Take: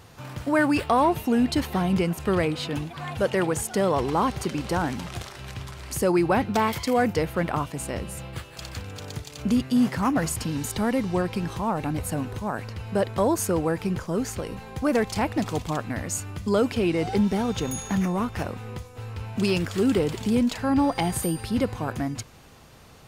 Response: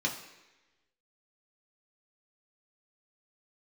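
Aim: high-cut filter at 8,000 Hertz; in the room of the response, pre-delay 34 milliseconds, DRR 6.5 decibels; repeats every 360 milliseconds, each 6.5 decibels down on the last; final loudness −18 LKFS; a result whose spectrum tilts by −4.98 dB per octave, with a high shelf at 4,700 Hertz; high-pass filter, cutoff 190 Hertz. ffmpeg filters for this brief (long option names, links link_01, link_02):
-filter_complex "[0:a]highpass=190,lowpass=8000,highshelf=frequency=4700:gain=-4,aecho=1:1:360|720|1080|1440|1800|2160:0.473|0.222|0.105|0.0491|0.0231|0.0109,asplit=2[link_01][link_02];[1:a]atrim=start_sample=2205,adelay=34[link_03];[link_02][link_03]afir=irnorm=-1:irlink=0,volume=-13dB[link_04];[link_01][link_04]amix=inputs=2:normalize=0,volume=7dB"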